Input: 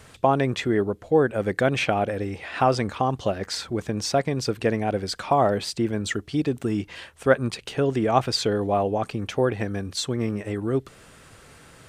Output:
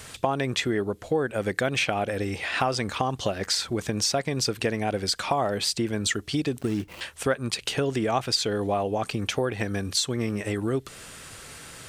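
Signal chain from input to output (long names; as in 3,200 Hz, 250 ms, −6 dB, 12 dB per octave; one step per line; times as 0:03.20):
0:06.61–0:07.01: running median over 25 samples
high-shelf EQ 2,100 Hz +9.5 dB
downward compressor 3 to 1, threshold −26 dBFS, peak gain reduction 11.5 dB
level +2 dB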